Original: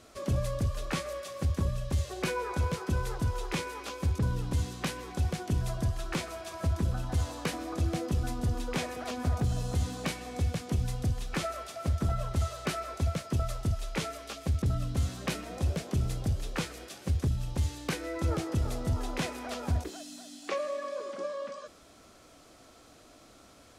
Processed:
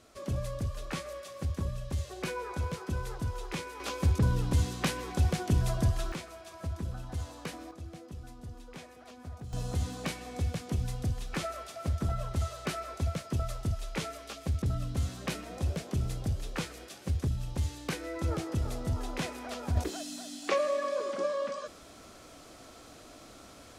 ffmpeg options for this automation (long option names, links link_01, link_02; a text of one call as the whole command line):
ffmpeg -i in.wav -af "asetnsamples=nb_out_samples=441:pad=0,asendcmd='3.8 volume volume 3dB;6.12 volume volume -7dB;7.71 volume volume -14.5dB;9.53 volume volume -2dB;19.77 volume volume 4.5dB',volume=-4dB" out.wav